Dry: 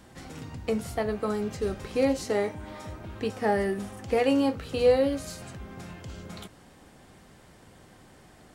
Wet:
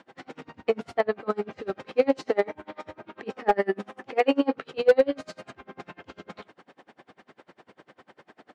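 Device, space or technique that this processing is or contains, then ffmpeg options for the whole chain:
helicopter radio: -filter_complex "[0:a]asettb=1/sr,asplit=3[s0][s1][s2];[s0]atrim=end=3.034[s3];[s1]atrim=start=3.03:end=4.78,asetpts=PTS-STARTPTS,afade=t=in:d=0.004:c=qsin,afade=t=out:st=1.746:d=0.004:c=qsin,highpass=f=120:w=0.5412,highpass=f=120:w=1.3066[s4];[s2]atrim=start=4.776[s5];[s3][s4]acrossfade=d=0.004:c1=hsin:c2=qsin[s6];[s6][s5]acrossfade=d=0.004:c1=qsin:c2=hsin,highpass=300,lowpass=2900,aeval=exprs='val(0)*pow(10,-31*(0.5-0.5*cos(2*PI*10*n/s))/20)':c=same,asoftclip=type=hard:threshold=0.112,volume=2.82"

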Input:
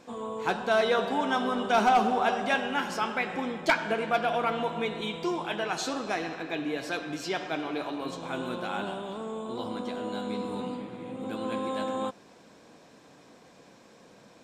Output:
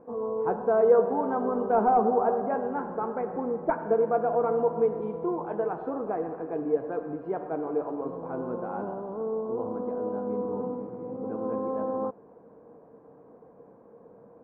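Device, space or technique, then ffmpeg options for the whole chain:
under water: -filter_complex "[0:a]asettb=1/sr,asplit=3[s0][s1][s2];[s0]atrim=end=2.074[s3];[s1]atrim=start=2.07:end=3.79,asetpts=PTS-STARTPTS,afade=t=in:d=0.004:c=qsin,afade=t=out:st=1.716:d=0.004:c=qsin,lowpass=2500[s4];[s2]atrim=start=3.786[s5];[s3][s4]acrossfade=d=0.004:c1=hsin:c2=qsin[s6];[s6][s5]acrossfade=d=0.004:c1=qsin:c2=hsin,lowpass=f=1100:w=0.5412,lowpass=f=1100:w=1.3066,equalizer=f=460:t=o:w=0.21:g=11"

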